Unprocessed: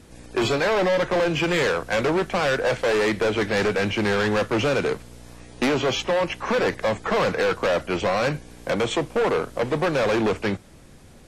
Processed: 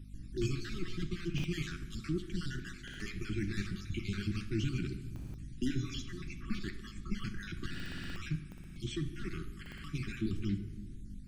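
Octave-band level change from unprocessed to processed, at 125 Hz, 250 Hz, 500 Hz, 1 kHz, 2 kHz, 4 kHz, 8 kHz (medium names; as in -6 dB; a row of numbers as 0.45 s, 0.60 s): -6.0 dB, -11.5 dB, -26.5 dB, -29.0 dB, -20.0 dB, -16.0 dB, -14.5 dB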